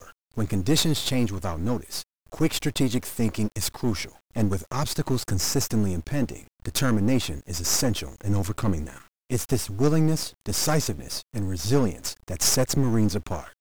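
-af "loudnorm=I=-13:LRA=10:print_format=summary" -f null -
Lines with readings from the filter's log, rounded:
Input Integrated:    -25.8 LUFS
Input True Peak:      -5.8 dBTP
Input LRA:             2.0 LU
Input Threshold:     -36.0 LUFS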